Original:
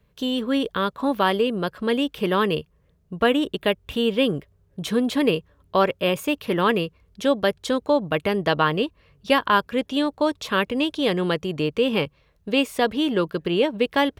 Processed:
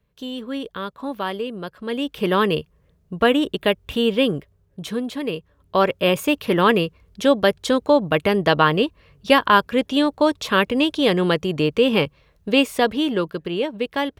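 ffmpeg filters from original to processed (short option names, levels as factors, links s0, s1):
-af "volume=4.73,afade=t=in:st=1.85:d=0.44:silence=0.375837,afade=t=out:st=4.11:d=1.12:silence=0.334965,afade=t=in:st=5.23:d=0.89:silence=0.281838,afade=t=out:st=12.57:d=0.92:silence=0.446684"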